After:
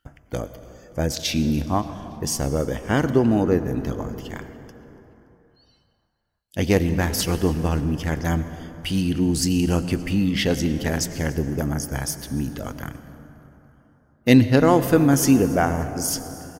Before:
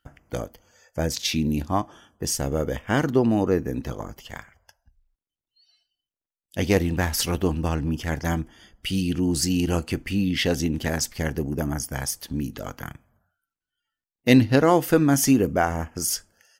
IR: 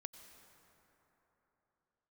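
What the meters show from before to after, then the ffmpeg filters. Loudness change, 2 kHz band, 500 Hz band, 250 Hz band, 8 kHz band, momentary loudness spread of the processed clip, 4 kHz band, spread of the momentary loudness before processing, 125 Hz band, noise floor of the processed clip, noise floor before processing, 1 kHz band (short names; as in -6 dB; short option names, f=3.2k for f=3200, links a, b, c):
+2.0 dB, +0.5 dB, +1.5 dB, +2.5 dB, +0.5 dB, 16 LU, +0.5 dB, 17 LU, +3.0 dB, -61 dBFS, under -85 dBFS, +1.0 dB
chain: -filter_complex "[0:a]asplit=4[a][b][c][d];[b]adelay=286,afreqshift=-79,volume=-23.5dB[e];[c]adelay=572,afreqshift=-158,volume=-29.7dB[f];[d]adelay=858,afreqshift=-237,volume=-35.9dB[g];[a][e][f][g]amix=inputs=4:normalize=0,asplit=2[h][i];[1:a]atrim=start_sample=2205,lowshelf=f=440:g=4[j];[i][j]afir=irnorm=-1:irlink=0,volume=10dB[k];[h][k]amix=inputs=2:normalize=0,volume=-8.5dB"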